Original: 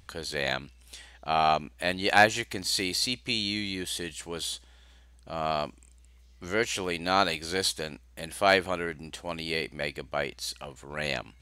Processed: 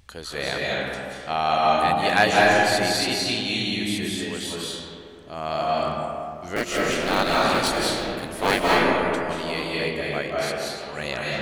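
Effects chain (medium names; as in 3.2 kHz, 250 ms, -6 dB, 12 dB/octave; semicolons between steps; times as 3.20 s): 6.56–8.62 s: cycle switcher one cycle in 3, inverted; reverberation RT60 2.5 s, pre-delay 143 ms, DRR -5 dB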